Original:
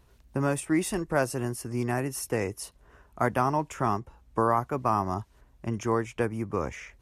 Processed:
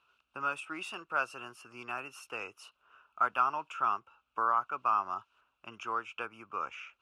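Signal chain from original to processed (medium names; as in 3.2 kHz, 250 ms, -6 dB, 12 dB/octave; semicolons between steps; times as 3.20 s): two resonant band-passes 1.9 kHz, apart 0.98 oct; trim +6.5 dB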